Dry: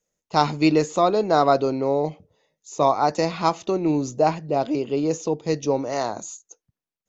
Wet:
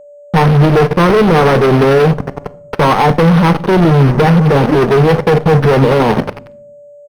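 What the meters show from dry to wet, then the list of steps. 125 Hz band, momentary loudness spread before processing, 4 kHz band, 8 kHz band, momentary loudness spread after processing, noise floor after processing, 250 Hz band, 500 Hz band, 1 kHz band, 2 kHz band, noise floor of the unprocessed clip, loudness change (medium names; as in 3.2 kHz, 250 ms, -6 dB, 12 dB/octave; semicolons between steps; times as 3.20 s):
+21.5 dB, 8 LU, +10.0 dB, no reading, 7 LU, -38 dBFS, +12.5 dB, +11.5 dB, +9.0 dB, +16.5 dB, under -85 dBFS, +12.0 dB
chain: gate with hold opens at -34 dBFS; tilt EQ -3.5 dB/octave; in parallel at +1.5 dB: compression 6:1, threshold -23 dBFS, peak gain reduction 14.5 dB; on the sum: static phaser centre 440 Hz, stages 8; vibrato 1 Hz 21 cents; on a send: feedback delay 406 ms, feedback 42%, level -24 dB; on the sum: square tremolo 11 Hz, depth 60%, duty 25%; fuzz box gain 38 dB, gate -39 dBFS; whistle 580 Hz -41 dBFS; simulated room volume 790 m³, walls furnished, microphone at 0.46 m; decimation joined by straight lines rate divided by 6×; trim +6 dB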